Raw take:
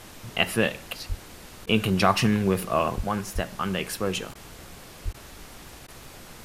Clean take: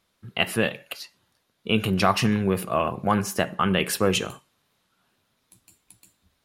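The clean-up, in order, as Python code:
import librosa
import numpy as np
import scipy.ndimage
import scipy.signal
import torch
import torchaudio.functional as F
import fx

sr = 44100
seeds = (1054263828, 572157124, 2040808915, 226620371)

y = fx.fix_deplosive(x, sr, at_s=(1.08, 2.96, 3.34, 5.04))
y = fx.fix_interpolate(y, sr, at_s=(1.66, 4.34, 5.13, 5.87), length_ms=11.0)
y = fx.noise_reduce(y, sr, print_start_s=5.79, print_end_s=6.29, reduce_db=26.0)
y = fx.fix_level(y, sr, at_s=3.0, step_db=6.0)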